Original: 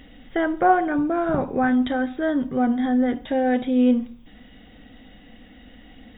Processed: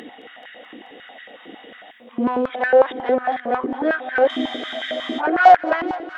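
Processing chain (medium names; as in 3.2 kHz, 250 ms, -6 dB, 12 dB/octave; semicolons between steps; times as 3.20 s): reverse the whole clip; gate -37 dBFS, range -8 dB; low-pass that closes with the level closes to 2.4 kHz, closed at -16 dBFS; in parallel at -2.5 dB: upward compressor, threshold -21 dBFS; on the sum: saturation -13.5 dBFS, distortion -12 dB; on a send: multi-head delay 216 ms, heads first and second, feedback 53%, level -17 dB; on the sum: spectral freeze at 4.31 s, 0.89 s; step-sequenced high-pass 11 Hz 340–1700 Hz; trim -1 dB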